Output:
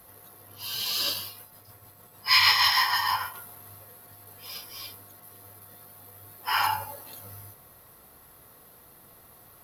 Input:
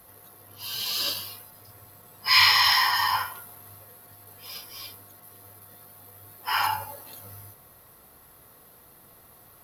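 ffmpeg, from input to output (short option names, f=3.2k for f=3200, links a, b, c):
-filter_complex "[0:a]asettb=1/sr,asplit=3[a][b][c];[a]atrim=end=1.264[d];[b]atrim=start=1.26:end=3.34,asetpts=PTS-STARTPTS,afade=t=in:d=0.004:c=qsin,afade=t=out:st=2.076:d=0.004:c=qsin,tremolo=f=6.5:d=0.42[e];[c]atrim=start=3.336[f];[d][e]acrossfade=d=0.004:c1=hsin:c2=qsin[g];[g][f]acrossfade=d=0.004:c1=qsin:c2=hsin"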